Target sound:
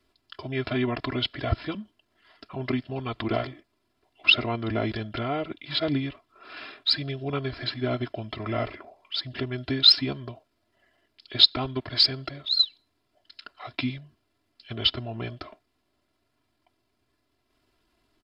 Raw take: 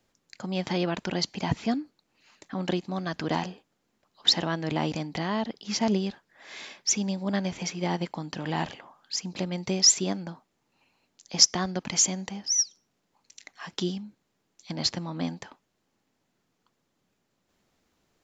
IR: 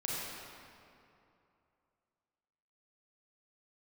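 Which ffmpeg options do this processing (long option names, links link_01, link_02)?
-af "aecho=1:1:2.1:0.88,asetrate=31183,aresample=44100,atempo=1.41421"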